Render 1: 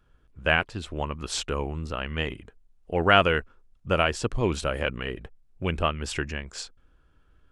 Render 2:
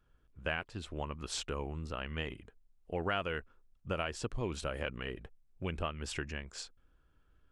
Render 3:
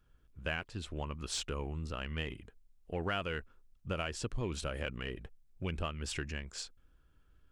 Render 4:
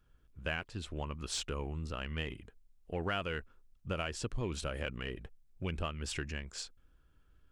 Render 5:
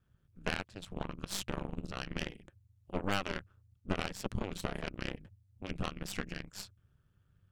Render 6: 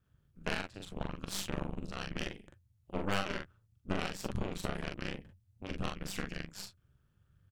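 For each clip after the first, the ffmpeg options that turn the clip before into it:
-af "acompressor=threshold=-25dB:ratio=3,volume=-7.5dB"
-filter_complex "[0:a]equalizer=f=770:t=o:w=2.8:g=-4,asplit=2[a][b];[b]asoftclip=type=tanh:threshold=-37.5dB,volume=-8.5dB[c];[a][c]amix=inputs=2:normalize=0"
-af anull
-af "aeval=exprs='val(0)*sin(2*PI*97*n/s)':c=same,aeval=exprs='0.0841*(cos(1*acos(clip(val(0)/0.0841,-1,1)))-cos(1*PI/2))+0.0211*(cos(4*acos(clip(val(0)/0.0841,-1,1)))-cos(4*PI/2))+0.00473*(cos(7*acos(clip(val(0)/0.0841,-1,1)))-cos(7*PI/2))+0.00266*(cos(8*acos(clip(val(0)/0.0841,-1,1)))-cos(8*PI/2))':c=same,volume=2.5dB"
-af "aecho=1:1:42|56:0.668|0.168,volume=-1.5dB"

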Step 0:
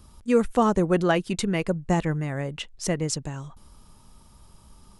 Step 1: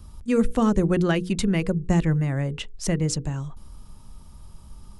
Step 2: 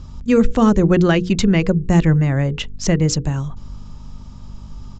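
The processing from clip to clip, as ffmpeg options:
-filter_complex "[0:a]lowshelf=f=170:g=10.5,bandreject=f=60:t=h:w=6,bandreject=f=120:t=h:w=6,bandreject=f=180:t=h:w=6,bandreject=f=240:t=h:w=6,bandreject=f=300:t=h:w=6,bandreject=f=360:t=h:w=6,bandreject=f=420:t=h:w=6,bandreject=f=480:t=h:w=6,acrossover=split=520|1200[a][b][c];[b]acompressor=threshold=-37dB:ratio=6[d];[a][d][c]amix=inputs=3:normalize=0"
-af "aeval=exprs='val(0)+0.00631*(sin(2*PI*50*n/s)+sin(2*PI*2*50*n/s)/2+sin(2*PI*3*50*n/s)/3+sin(2*PI*4*50*n/s)/4+sin(2*PI*5*50*n/s)/5)':c=same,aresample=16000,aresample=44100,alimiter=level_in=11dB:limit=-1dB:release=50:level=0:latency=1,volume=-3.5dB"

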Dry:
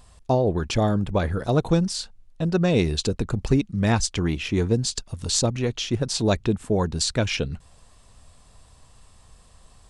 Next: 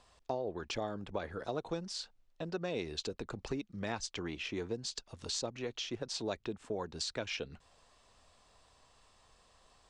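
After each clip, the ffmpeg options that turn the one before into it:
-filter_complex "[0:a]acrossover=split=290 7400:gain=0.224 1 0.0631[a][b][c];[a][b][c]amix=inputs=3:normalize=0,acompressor=threshold=-33dB:ratio=2,volume=-6dB"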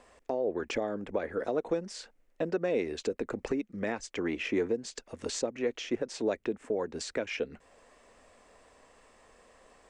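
-af "equalizer=f=125:t=o:w=1:g=-5,equalizer=f=250:t=o:w=1:g=9,equalizer=f=500:t=o:w=1:g=10,equalizer=f=2k:t=o:w=1:g=10,equalizer=f=4k:t=o:w=1:g=-7,equalizer=f=8k:t=o:w=1:g=4,alimiter=limit=-20.5dB:level=0:latency=1:release=481,volume=1dB"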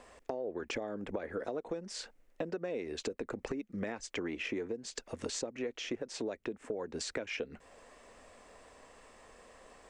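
-af "acompressor=threshold=-37dB:ratio=6,volume=2.5dB"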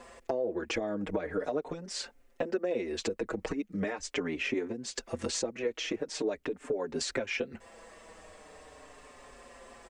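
-filter_complex "[0:a]asplit=2[a][b];[b]adelay=5.4,afreqshift=-0.41[c];[a][c]amix=inputs=2:normalize=1,volume=8dB"

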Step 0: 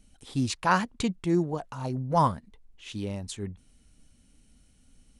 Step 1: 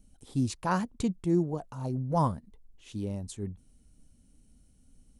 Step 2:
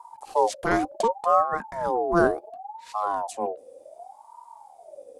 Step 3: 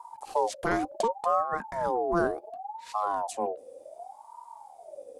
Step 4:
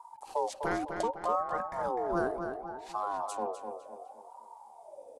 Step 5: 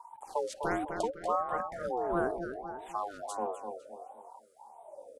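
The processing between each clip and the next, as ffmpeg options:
-af "equalizer=f=2.4k:t=o:w=2.9:g=-11"
-af "lowshelf=f=120:g=9,aeval=exprs='val(0)*sin(2*PI*730*n/s+730*0.3/0.68*sin(2*PI*0.68*n/s))':c=same,volume=6.5dB"
-af "acompressor=threshold=-26dB:ratio=2"
-filter_complex "[0:a]asplit=2[a][b];[b]adelay=252,lowpass=f=4.9k:p=1,volume=-6.5dB,asplit=2[c][d];[d]adelay=252,lowpass=f=4.9k:p=1,volume=0.42,asplit=2[e][f];[f]adelay=252,lowpass=f=4.9k:p=1,volume=0.42,asplit=2[g][h];[h]adelay=252,lowpass=f=4.9k:p=1,volume=0.42,asplit=2[i][j];[j]adelay=252,lowpass=f=4.9k:p=1,volume=0.42[k];[a][c][e][g][i][k]amix=inputs=6:normalize=0,volume=-5dB"
-af "afftfilt=real='re*(1-between(b*sr/1024,850*pow(5600/850,0.5+0.5*sin(2*PI*1.5*pts/sr))/1.41,850*pow(5600/850,0.5+0.5*sin(2*PI*1.5*pts/sr))*1.41))':imag='im*(1-between(b*sr/1024,850*pow(5600/850,0.5+0.5*sin(2*PI*1.5*pts/sr))/1.41,850*pow(5600/850,0.5+0.5*sin(2*PI*1.5*pts/sr))*1.41))':win_size=1024:overlap=0.75"

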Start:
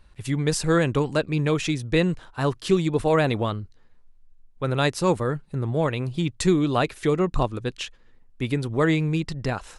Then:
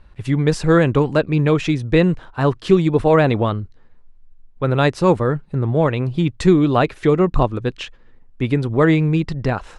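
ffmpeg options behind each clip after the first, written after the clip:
-af "aemphasis=mode=reproduction:type=75fm,volume=6dB"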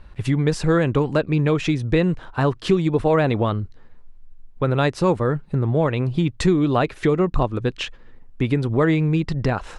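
-af "acompressor=threshold=-24dB:ratio=2,volume=3.5dB"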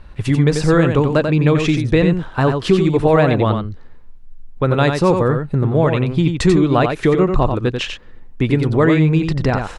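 -af "aecho=1:1:90:0.501,volume=4dB"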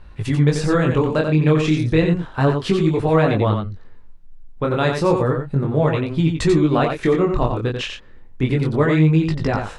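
-af "flanger=delay=18.5:depth=7.5:speed=0.32"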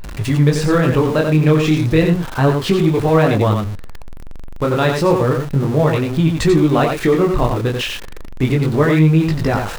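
-af "aeval=exprs='val(0)+0.5*0.0422*sgn(val(0))':c=same,volume=2dB"

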